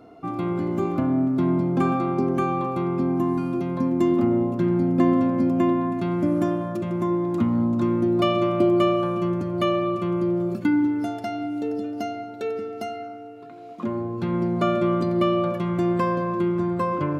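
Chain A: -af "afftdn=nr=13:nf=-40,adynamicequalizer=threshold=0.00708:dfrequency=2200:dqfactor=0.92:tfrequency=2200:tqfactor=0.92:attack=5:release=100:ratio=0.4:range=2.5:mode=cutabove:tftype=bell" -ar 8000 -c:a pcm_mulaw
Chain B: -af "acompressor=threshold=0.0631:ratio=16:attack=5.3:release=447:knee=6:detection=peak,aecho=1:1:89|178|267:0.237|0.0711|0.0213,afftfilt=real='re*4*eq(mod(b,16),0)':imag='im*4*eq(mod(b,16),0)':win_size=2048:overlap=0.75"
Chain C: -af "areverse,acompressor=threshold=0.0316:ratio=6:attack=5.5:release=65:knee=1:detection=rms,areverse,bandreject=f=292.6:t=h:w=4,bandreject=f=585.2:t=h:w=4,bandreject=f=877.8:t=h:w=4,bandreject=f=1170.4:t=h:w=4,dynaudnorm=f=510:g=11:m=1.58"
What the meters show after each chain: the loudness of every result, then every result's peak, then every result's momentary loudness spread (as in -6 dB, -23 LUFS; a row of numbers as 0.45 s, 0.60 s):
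-23.5 LUFS, -24.5 LUFS, -30.5 LUFS; -8.0 dBFS, -14.5 dBFS, -18.5 dBFS; 10 LU, 10 LU, 5 LU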